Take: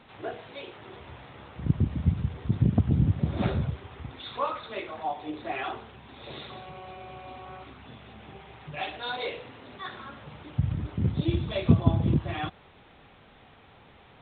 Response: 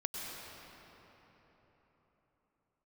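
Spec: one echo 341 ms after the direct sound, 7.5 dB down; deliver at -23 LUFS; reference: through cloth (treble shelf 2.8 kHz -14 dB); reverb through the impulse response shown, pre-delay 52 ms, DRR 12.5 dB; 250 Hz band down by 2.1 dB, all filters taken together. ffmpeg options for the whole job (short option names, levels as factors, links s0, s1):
-filter_complex "[0:a]equalizer=f=250:t=o:g=-3,aecho=1:1:341:0.422,asplit=2[s0][s1];[1:a]atrim=start_sample=2205,adelay=52[s2];[s1][s2]afir=irnorm=-1:irlink=0,volume=0.178[s3];[s0][s3]amix=inputs=2:normalize=0,highshelf=f=2800:g=-14,volume=2.11"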